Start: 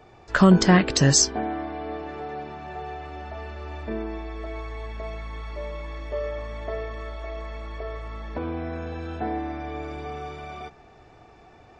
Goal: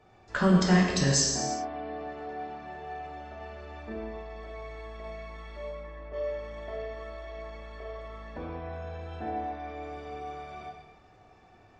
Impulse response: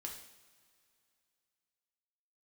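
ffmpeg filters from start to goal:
-filter_complex "[0:a]asplit=3[link_01][link_02][link_03];[link_01]afade=type=out:start_time=5.69:duration=0.02[link_04];[link_02]lowpass=2000,afade=type=in:start_time=5.69:duration=0.02,afade=type=out:start_time=6.12:duration=0.02[link_05];[link_03]afade=type=in:start_time=6.12:duration=0.02[link_06];[link_04][link_05][link_06]amix=inputs=3:normalize=0[link_07];[1:a]atrim=start_sample=2205,afade=type=out:start_time=0.28:duration=0.01,atrim=end_sample=12789,asetrate=25578,aresample=44100[link_08];[link_07][link_08]afir=irnorm=-1:irlink=0,volume=-7dB"

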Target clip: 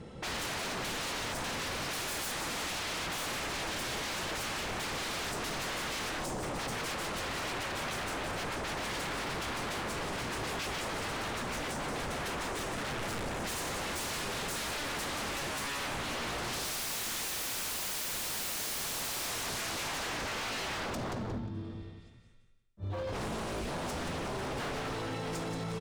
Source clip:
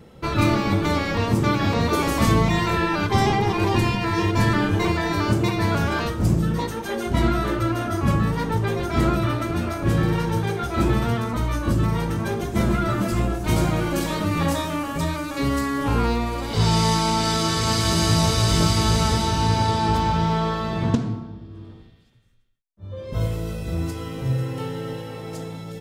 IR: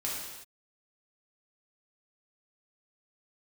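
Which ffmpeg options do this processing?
-filter_complex "[0:a]asettb=1/sr,asplit=3[link_01][link_02][link_03];[link_01]atrim=end=12.754[link_04];[link_02]atrim=start=12.75:end=13.37,asetpts=PTS-STARTPTS,afade=type=in:duration=0.004:curve=qsin,afade=type=out:start_time=0.616:duration=0.004:curve=qsin,aeval=exprs='(tanh(12.6*val(0)+0.55)-tanh(0.55))/12.6':channel_layout=same[link_05];[link_03]atrim=start=13.366[link_06];[link_04][link_05]acrossfade=duration=0.004:curve1=hsin:curve2=qsin[link_07];[link_07][link_06]acrossfade=duration=0.004:curve1=qsin:curve2=hsin,aecho=1:1:178|356|534:0.422|0.0928|0.0204,acrossover=split=5000[link_08][link_09];[link_08]alimiter=limit=-18dB:level=0:latency=1:release=159[link_10];[link_10][link_09]amix=inputs=2:normalize=0,aresample=22050,aresample=44100,aeval=exprs='0.0266*(abs(mod(val(0)/0.0266+3,4)-2)-1)':channel_layout=same"

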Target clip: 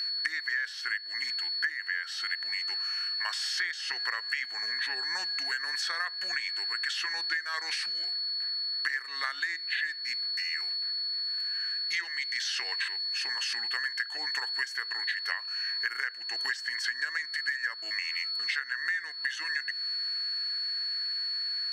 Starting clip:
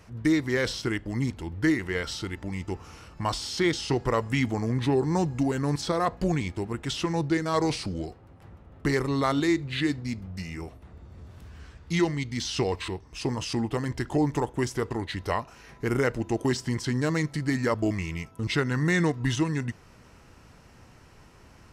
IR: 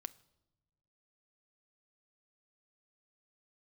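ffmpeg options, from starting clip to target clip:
-af "aeval=exprs='val(0)+0.0282*sin(2*PI*4400*n/s)':channel_layout=same,highpass=frequency=1700:width_type=q:width=11,acompressor=threshold=-28dB:ratio=16"

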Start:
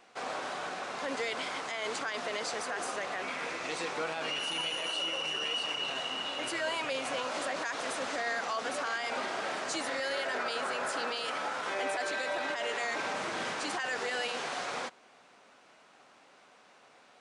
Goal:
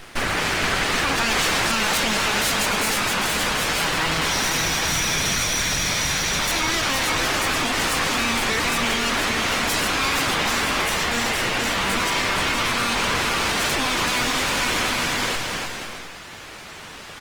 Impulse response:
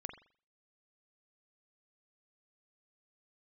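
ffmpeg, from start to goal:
-filter_complex "[0:a]asplit=2[link_01][link_02];[link_02]acompressor=threshold=-44dB:ratio=6,volume=-2.5dB[link_03];[link_01][link_03]amix=inputs=2:normalize=0,aeval=exprs='abs(val(0))':channel_layout=same,acrossover=split=2200[link_04][link_05];[link_04]crystalizer=i=3:c=0[link_06];[link_06][link_05]amix=inputs=2:normalize=0,asettb=1/sr,asplit=3[link_07][link_08][link_09];[link_07]atrim=end=1.304[link_10];[link_08]atrim=start=1.3:end=2.9,asetpts=PTS-STARTPTS,afade=type=in:duration=0.004:curve=qsin,afade=type=out:start_time=1.596:duration=0.004:curve=qsin,acontrast=77[link_11];[link_09]atrim=start=2.896[link_12];[link_10][link_11]acrossfade=duration=0.004:curve1=hsin:curve2=qsin[link_13];[link_13][link_12]acrossfade=duration=0.004:curve1=qsin:curve2=hsin,asoftclip=type=tanh:threshold=-24.5dB,asettb=1/sr,asplit=3[link_14][link_15][link_16];[link_14]atrim=end=10.424[link_17];[link_15]atrim=start=10.42:end=11.21,asetpts=PTS-STARTPTS,afade=type=in:duration=0.004:curve=qsin,afade=type=out:start_time=0.786:duration=0.004:curve=qsin,asplit=2[link_18][link_19];[link_19]adelay=38,volume=-6dB[link_20];[link_18][link_20]amix=inputs=2:normalize=0,atrim=end_sample=34839[link_21];[link_16]atrim=start=11.206[link_22];[link_17][link_21]acrossfade=duration=0.004:curve1=hsin:curve2=qsin[link_23];[link_23][link_22]acrossfade=duration=0.004:curve1=qsin:curve2=hsin,aecho=1:1:470|775.5|974.1|1103|1187:0.631|0.398|0.251|0.158|0.1,alimiter=level_in=24dB:limit=-1dB:release=50:level=0:latency=1,volume=-6.5dB" -ar 48000 -c:a libopus -b:a 24k

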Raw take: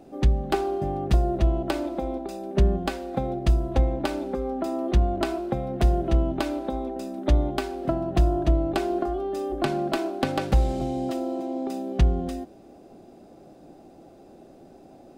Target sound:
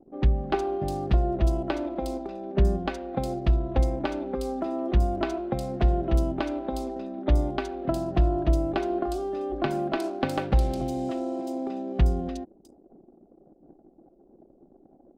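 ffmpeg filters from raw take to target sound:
ffmpeg -i in.wav -filter_complex "[0:a]acrossover=split=4300[link_01][link_02];[link_02]adelay=360[link_03];[link_01][link_03]amix=inputs=2:normalize=0,anlmdn=0.1,volume=-1.5dB" out.wav

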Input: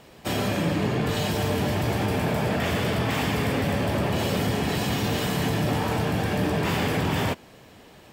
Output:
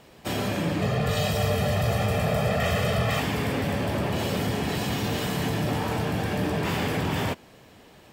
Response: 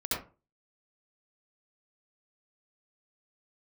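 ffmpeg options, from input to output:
-filter_complex "[0:a]asettb=1/sr,asplit=3[link_01][link_02][link_03];[link_01]atrim=end=0.814[link_04];[link_02]atrim=start=0.81:end=3.2,asetpts=PTS-STARTPTS,afade=type=in:duration=0.004:curve=qsin,afade=type=out:start_time=2.386:duration=0.004:curve=qsin,aecho=1:1:1.6:0.89,atrim=end_sample=105399[link_05];[link_03]atrim=start=3.196[link_06];[link_04][link_05]acrossfade=duration=0.004:curve1=hsin:curve2=qsin[link_07];[link_07][link_06]acrossfade=duration=0.004:curve1=qsin:curve2=hsin,volume=-2dB"

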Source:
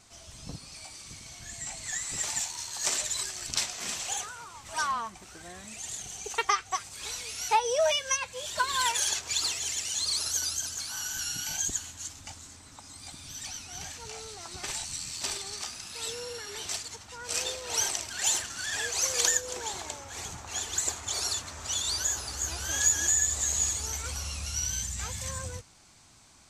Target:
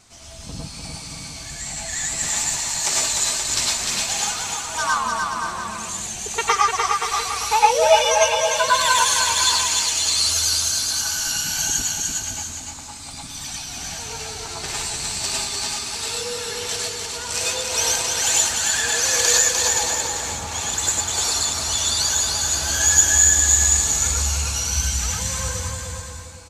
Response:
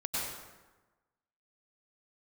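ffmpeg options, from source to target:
-filter_complex "[0:a]aecho=1:1:300|525|693.8|820.3|915.2:0.631|0.398|0.251|0.158|0.1[link_01];[1:a]atrim=start_sample=2205,afade=type=out:start_time=0.17:duration=0.01,atrim=end_sample=7938[link_02];[link_01][link_02]afir=irnorm=-1:irlink=0,volume=6.5dB"

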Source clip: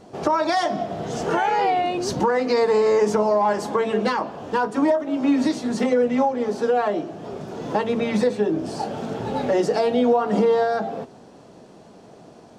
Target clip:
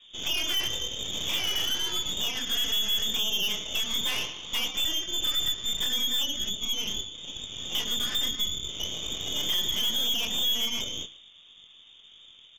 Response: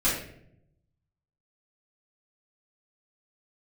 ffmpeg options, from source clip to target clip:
-filter_complex "[0:a]asettb=1/sr,asplit=3[link_01][link_02][link_03];[link_01]atrim=end=9.504[link_04];[link_02]atrim=start=9.5:end=10.27,asetpts=PTS-STARTPTS,afade=type=in:duration=0.004:curve=qsin,afade=type=out:start_time=0.766:duration=0.004:curve=qsin,acontrast=65[link_05];[link_03]atrim=start=10.266[link_06];[link_04][link_05]acrossfade=duration=0.004:curve1=hsin:curve2=qsin[link_07];[link_07][link_06]acrossfade=duration=0.004:curve1=qsin:curve2=hsin,flanger=delay=18.5:depth=5.2:speed=1.1,lowpass=frequency=3200:width_type=q:width=0.5098,lowpass=frequency=3200:width_type=q:width=0.6013,lowpass=frequency=3200:width_type=q:width=0.9,lowpass=frequency=3200:width_type=q:width=2.563,afreqshift=-3800,asettb=1/sr,asplit=3[link_08][link_09][link_10];[link_08]atrim=end=4.064[link_11];[link_09]atrim=start=4.06:end=4.68,asetpts=PTS-STARTPTS,afade=type=in:duration=0.004:curve=qsin,afade=type=out:start_time=0.616:duration=0.004:curve=qsin,equalizer=frequency=1000:width_type=o:width=1.4:gain=7.5[link_12];[link_10]atrim=start=4.676[link_13];[link_11][link_12]acrossfade=duration=0.004:curve1=hsin:curve2=qsin[link_14];[link_14][link_13]acrossfade=duration=0.004:curve1=qsin:curve2=hsin,asplit=2[link_15][link_16];[link_16]adelay=109,lowpass=frequency=1500:poles=1,volume=-7dB,asplit=2[link_17][link_18];[link_18]adelay=109,lowpass=frequency=1500:poles=1,volume=0.55,asplit=2[link_19][link_20];[link_20]adelay=109,lowpass=frequency=1500:poles=1,volume=0.55,asplit=2[link_21][link_22];[link_22]adelay=109,lowpass=frequency=1500:poles=1,volume=0.55,asplit=2[link_23][link_24];[link_24]adelay=109,lowpass=frequency=1500:poles=1,volume=0.55,asplit=2[link_25][link_26];[link_26]adelay=109,lowpass=frequency=1500:poles=1,volume=0.55,asplit=2[link_27][link_28];[link_28]adelay=109,lowpass=frequency=1500:poles=1,volume=0.55[link_29];[link_15][link_17][link_19][link_21][link_23][link_25][link_27][link_29]amix=inputs=8:normalize=0,asplit=2[link_30][link_31];[1:a]atrim=start_sample=2205[link_32];[link_31][link_32]afir=irnorm=-1:irlink=0,volume=-31.5dB[link_33];[link_30][link_33]amix=inputs=2:normalize=0,alimiter=limit=-16dB:level=0:latency=1:release=347,asettb=1/sr,asplit=3[link_34][link_35][link_36];[link_34]atrim=end=6.494[link_37];[link_35]atrim=start=6.49:end=7.15,asetpts=PTS-STARTPTS,afade=type=in:duration=0.004:curve=qsin,afade=type=out:start_time=0.656:duration=0.004:curve=qsin,equalizer=frequency=2000:width_type=o:width=0.92:gain=-8[link_38];[link_36]atrim=start=7.146[link_39];[link_37][link_38]acrossfade=duration=0.004:curve1=hsin:curve2=qsin[link_40];[link_40][link_39]acrossfade=duration=0.004:curve1=qsin:curve2=hsin,aeval=exprs='0.158*(cos(1*acos(clip(val(0)/0.158,-1,1)))-cos(1*PI/2))+0.0316*(cos(6*acos(clip(val(0)/0.158,-1,1)))-cos(6*PI/2))':channel_layout=same,volume=-4dB"

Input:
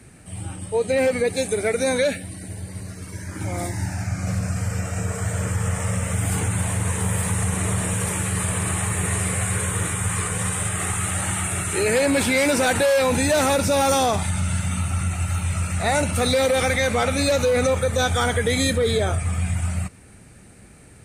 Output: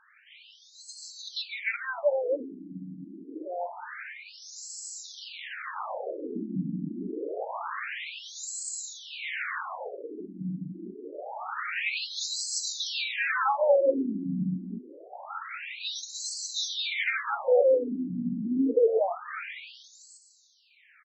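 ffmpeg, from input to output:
ffmpeg -i in.wav -filter_complex "[0:a]highpass=frequency=46:width=0.5412,highpass=frequency=46:width=1.3066,lowshelf=frequency=73:gain=8.5,asettb=1/sr,asplit=3[link_01][link_02][link_03];[link_01]atrim=end=5.034[link_04];[link_02]atrim=start=5.03:end=7.45,asetpts=PTS-STARTPTS,afade=type=in:duration=0.004:curve=qsin,afade=type=out:start_time=2.416:duration=0.004:curve=qsin,acrusher=samples=20:mix=1:aa=0.000001:lfo=1:lforange=12:lforate=3.4[link_05];[link_03]atrim=start=7.446[link_06];[link_04][link_05]acrossfade=duration=0.004:curve1=hsin:curve2=qsin[link_07];[link_07][link_06]acrossfade=duration=0.004:curve1=qsin:curve2=hsin,aecho=1:1:300|600|900:0.531|0.122|0.0281,afftfilt=real='re*between(b*sr/1024,230*pow(5800/230,0.5+0.5*sin(2*PI*0.26*pts/sr))/1.41,230*pow(5800/230,0.5+0.5*sin(2*PI*0.26*pts/sr))*1.41)':imag='im*between(b*sr/1024,230*pow(5800/230,0.5+0.5*sin(2*PI*0.26*pts/sr))/1.41,230*pow(5800/230,0.5+0.5*sin(2*PI*0.26*pts/sr))*1.41)':win_size=1024:overlap=0.75" out.wav

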